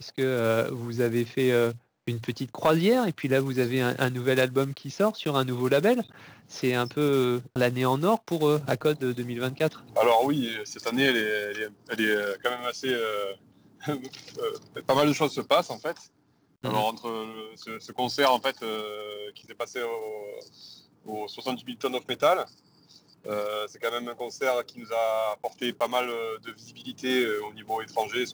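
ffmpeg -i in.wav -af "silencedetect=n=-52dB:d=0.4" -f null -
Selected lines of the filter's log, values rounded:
silence_start: 16.07
silence_end: 16.63 | silence_duration: 0.56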